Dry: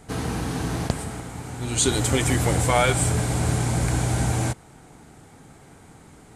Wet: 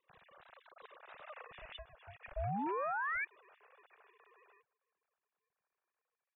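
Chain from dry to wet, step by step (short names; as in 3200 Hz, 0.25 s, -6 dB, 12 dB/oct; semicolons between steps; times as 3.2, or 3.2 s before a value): sine-wave speech; Doppler pass-by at 1.41, 20 m/s, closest 1.3 m; compressor 6:1, threshold -47 dBFS, peak gain reduction 20 dB; comb 0.9 ms, depth 90%; painted sound rise, 2.36–3.25, 330–2100 Hz -32 dBFS; ring modulator 300 Hz; gain -1.5 dB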